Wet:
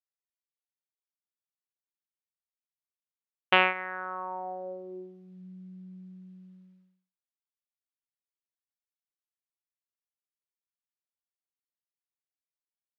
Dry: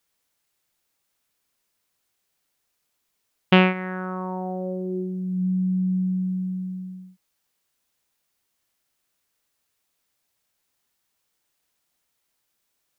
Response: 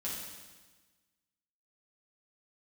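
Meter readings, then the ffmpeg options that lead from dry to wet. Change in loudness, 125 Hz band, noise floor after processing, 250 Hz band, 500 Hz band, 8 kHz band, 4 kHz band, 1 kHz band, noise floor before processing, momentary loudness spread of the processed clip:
−4.0 dB, below −20 dB, below −85 dBFS, −21.0 dB, −8.0 dB, can't be measured, −3.0 dB, −1.5 dB, −76 dBFS, 25 LU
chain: -af "agate=range=-33dB:threshold=-28dB:ratio=3:detection=peak,highpass=700,lowpass=3100"

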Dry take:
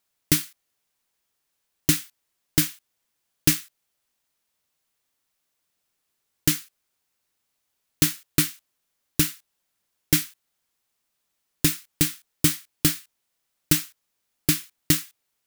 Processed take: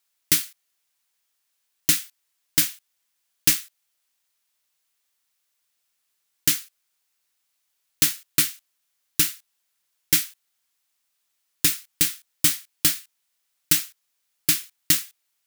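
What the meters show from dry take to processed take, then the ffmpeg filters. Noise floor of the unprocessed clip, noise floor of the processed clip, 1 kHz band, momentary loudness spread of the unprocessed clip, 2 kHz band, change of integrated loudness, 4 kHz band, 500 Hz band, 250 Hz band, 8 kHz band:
−78 dBFS, −75 dBFS, −1.0 dB, 5 LU, +1.0 dB, +2.0 dB, +2.5 dB, −7.5 dB, −8.5 dB, +3.0 dB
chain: -af "tiltshelf=frequency=790:gain=-6.5,volume=-3.5dB"

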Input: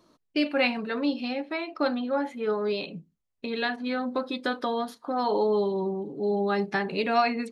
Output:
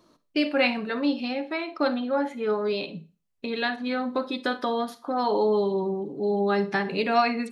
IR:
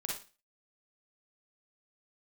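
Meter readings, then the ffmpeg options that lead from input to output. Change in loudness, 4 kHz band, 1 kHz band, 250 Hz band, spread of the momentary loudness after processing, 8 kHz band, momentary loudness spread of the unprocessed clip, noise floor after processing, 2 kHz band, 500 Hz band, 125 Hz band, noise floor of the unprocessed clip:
+1.5 dB, +1.5 dB, +1.5 dB, +1.5 dB, 7 LU, can't be measured, 7 LU, −72 dBFS, +1.5 dB, +1.5 dB, +1.5 dB, −77 dBFS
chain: -filter_complex "[0:a]asplit=2[link_01][link_02];[1:a]atrim=start_sample=2205[link_03];[link_02][link_03]afir=irnorm=-1:irlink=0,volume=-12dB[link_04];[link_01][link_04]amix=inputs=2:normalize=0"

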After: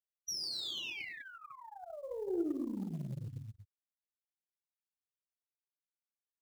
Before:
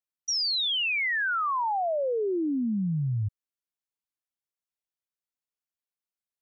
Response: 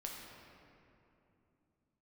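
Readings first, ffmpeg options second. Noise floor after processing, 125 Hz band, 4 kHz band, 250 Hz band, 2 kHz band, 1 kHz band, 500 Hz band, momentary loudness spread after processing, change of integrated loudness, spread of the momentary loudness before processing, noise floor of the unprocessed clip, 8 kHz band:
below −85 dBFS, −13.5 dB, −13.0 dB, −9.5 dB, −18.5 dB, −23.5 dB, −12.0 dB, 15 LU, −13.0 dB, 5 LU, below −85 dBFS, can't be measured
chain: -filter_complex "[0:a]acrossover=split=370|3000[link_01][link_02][link_03];[link_02]acompressor=threshold=-47dB:ratio=4[link_04];[link_01][link_04][link_03]amix=inputs=3:normalize=0,asplit=2[link_05][link_06];[link_06]adelay=233.2,volume=-8dB,highshelf=frequency=4000:gain=-5.25[link_07];[link_05][link_07]amix=inputs=2:normalize=0[link_08];[1:a]atrim=start_sample=2205,afade=type=out:start_time=0.2:duration=0.01,atrim=end_sample=9261[link_09];[link_08][link_09]afir=irnorm=-1:irlink=0,afftfilt=real='re*gte(hypot(re,im),0.0501)':imag='im*gte(hypot(re,im),0.0501)':win_size=1024:overlap=0.75,acrusher=bits=8:mode=log:mix=0:aa=0.000001,aeval=exprs='0.119*(cos(1*acos(clip(val(0)/0.119,-1,1)))-cos(1*PI/2))+0.0168*(cos(2*acos(clip(val(0)/0.119,-1,1)))-cos(2*PI/2))+0.0075*(cos(3*acos(clip(val(0)/0.119,-1,1)))-cos(3*PI/2))+0.00531*(cos(4*acos(clip(val(0)/0.119,-1,1)))-cos(4*PI/2))+0.00422*(cos(8*acos(clip(val(0)/0.119,-1,1)))-cos(8*PI/2))':channel_layout=same,acompressor=threshold=-34dB:ratio=6,highpass=frequency=100:poles=1,equalizer=frequency=350:width_type=o:width=0.38:gain=8.5,volume=-2dB"

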